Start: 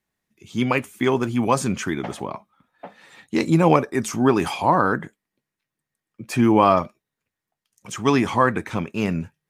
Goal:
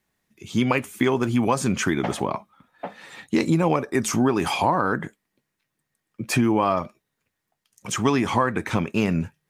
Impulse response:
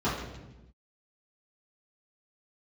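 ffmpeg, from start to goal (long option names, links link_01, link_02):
-af "acompressor=threshold=-23dB:ratio=5,volume=5.5dB"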